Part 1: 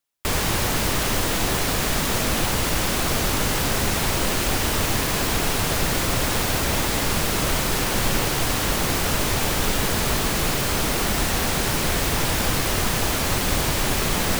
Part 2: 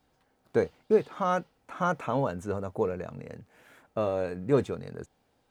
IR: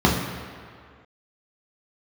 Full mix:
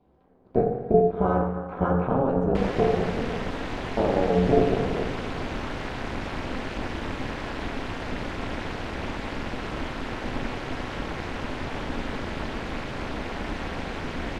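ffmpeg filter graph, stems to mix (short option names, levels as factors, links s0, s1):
-filter_complex "[0:a]bandreject=f=1200:w=12,adelay=2300,volume=0.668[s0];[1:a]equalizer=f=450:w=1.6:g=9.5,acompressor=threshold=0.0794:ratio=6,volume=0.75,asplit=2[s1][s2];[s2]volume=0.2[s3];[2:a]atrim=start_sample=2205[s4];[s3][s4]afir=irnorm=-1:irlink=0[s5];[s0][s1][s5]amix=inputs=3:normalize=0,lowpass=2500,equalizer=f=150:w=1.6:g=-3.5,tremolo=f=260:d=0.919"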